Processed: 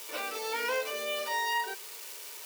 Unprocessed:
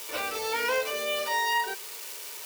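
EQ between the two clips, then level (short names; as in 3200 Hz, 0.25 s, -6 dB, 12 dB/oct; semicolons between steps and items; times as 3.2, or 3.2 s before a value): brick-wall FIR high-pass 190 Hz; -4.0 dB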